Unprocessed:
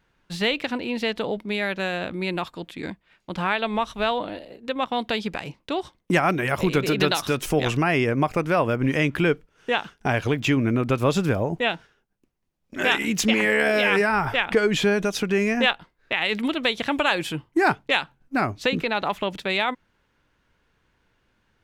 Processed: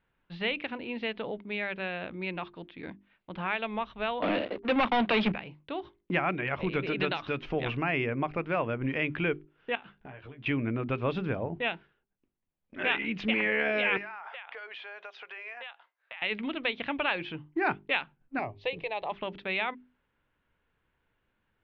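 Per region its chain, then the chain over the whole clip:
4.22–5.32 s: gate -44 dBFS, range -8 dB + steep high-pass 170 Hz 96 dB/octave + waveshaping leveller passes 5
9.75–10.46 s: compression 12:1, threshold -34 dBFS + doubling 15 ms -5 dB + careless resampling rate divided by 4×, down filtered, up hold
13.97–16.22 s: high-pass 640 Hz 24 dB/octave + compression 8:1, threshold -30 dBFS
18.39–19.12 s: dynamic bell 1.2 kHz, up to +5 dB, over -36 dBFS, Q 1 + static phaser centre 580 Hz, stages 4
whole clip: inverse Chebyshev low-pass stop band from 8 kHz, stop band 50 dB; hum notches 50/100/150/200/250/300/350/400 Hz; dynamic bell 2.4 kHz, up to +5 dB, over -37 dBFS, Q 3; trim -8.5 dB

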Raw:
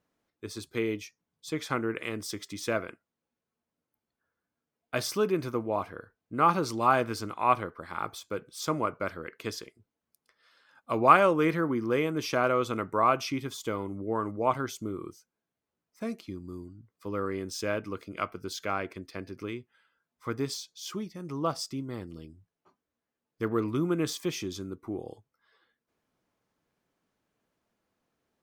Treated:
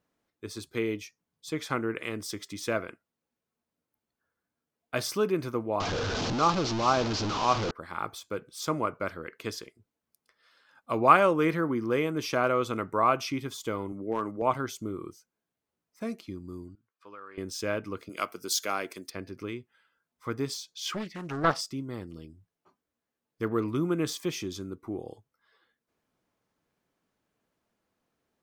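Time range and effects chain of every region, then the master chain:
5.80–7.71 s: one-bit delta coder 32 kbps, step -23 dBFS + peaking EQ 1.9 kHz -7 dB 0.87 oct
13.92–14.42 s: high-pass 140 Hz + hard clipper -20.5 dBFS
16.75–17.38 s: band-pass filter 1.8 kHz, Q 1.1 + compression 3:1, threshold -42 dBFS + band-stop 2 kHz, Q 5.8
18.09–19.10 s: high-pass 190 Hz + tone controls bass -2 dB, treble +15 dB
20.75–21.61 s: peaking EQ 2 kHz +11.5 dB 2.1 oct + loudspeaker Doppler distortion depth 0.56 ms
whole clip: none

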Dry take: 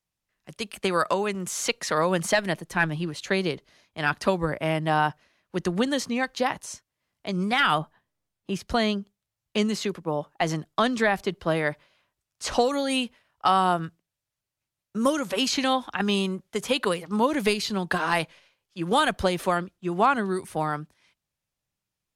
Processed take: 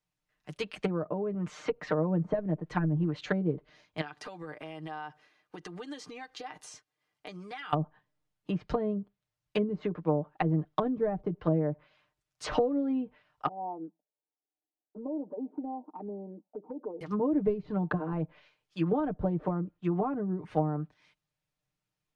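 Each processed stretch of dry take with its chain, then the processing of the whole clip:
4.01–7.73 s: high-pass 240 Hz 6 dB/octave + compression 12:1, threshold -37 dBFS + comb 2.5 ms, depth 33%
13.48–17.01 s: Chebyshev band-pass 220–880 Hz, order 4 + compression 3:1, threshold -33 dBFS + touch-sensitive flanger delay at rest 2.7 ms, full sweep at -30.5 dBFS
whole clip: low-pass that closes with the level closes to 420 Hz, closed at -22 dBFS; treble shelf 6.5 kHz -10.5 dB; comb 6.6 ms, depth 68%; trim -2 dB

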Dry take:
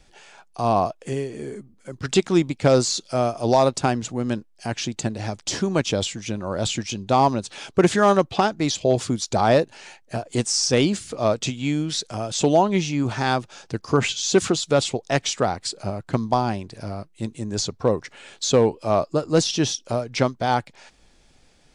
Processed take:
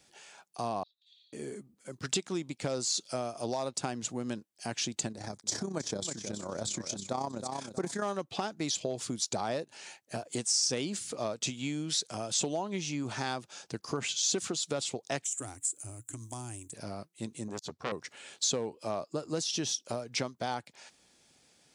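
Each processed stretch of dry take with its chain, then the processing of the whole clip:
0.83–1.33 s: companding laws mixed up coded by mu + Butterworth band-pass 3.8 kHz, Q 7.8 + comb 3.3 ms, depth 87%
5.12–8.02 s: peaking EQ 2.8 kHz -13.5 dB 0.47 oct + feedback delay 318 ms, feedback 26%, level -10.5 dB + AM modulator 32 Hz, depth 45%
15.24–16.73 s: FFT filter 120 Hz 0 dB, 190 Hz -30 dB, 280 Hz -1 dB, 480 Hz -19 dB, 3 kHz -8 dB, 4.6 kHz -18 dB, 7.4 kHz +15 dB, 11 kHz +12 dB + compression 10:1, threshold -27 dBFS + tape noise reduction on one side only encoder only
17.48–17.92 s: treble shelf 6.4 kHz -4 dB + doubling 13 ms -10.5 dB + transformer saturation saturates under 1.8 kHz
whole clip: compression 6:1, threshold -23 dBFS; high-pass 130 Hz 12 dB/octave; treble shelf 5.2 kHz +10.5 dB; trim -7.5 dB

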